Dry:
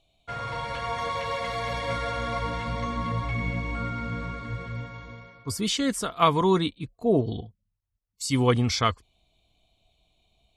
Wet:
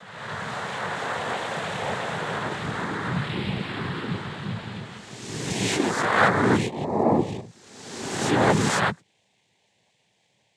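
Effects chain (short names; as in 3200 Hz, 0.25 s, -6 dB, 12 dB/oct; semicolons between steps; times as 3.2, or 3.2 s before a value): spectral swells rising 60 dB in 1.36 s; noise vocoder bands 6; dynamic EQ 4900 Hz, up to -5 dB, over -39 dBFS, Q 0.83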